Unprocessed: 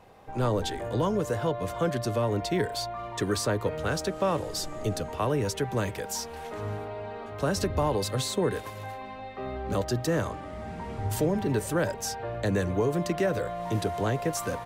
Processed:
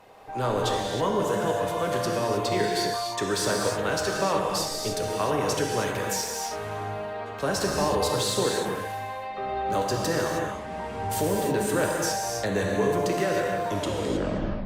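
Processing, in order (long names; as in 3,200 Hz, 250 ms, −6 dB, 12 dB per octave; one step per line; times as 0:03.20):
turntable brake at the end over 0.97 s
low-shelf EQ 220 Hz −11 dB
in parallel at −8.5 dB: soft clipping −29 dBFS, distortion −10 dB
on the sum: reverb whose tail is shaped and stops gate 340 ms flat, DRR −1 dB
Opus 64 kbit/s 48,000 Hz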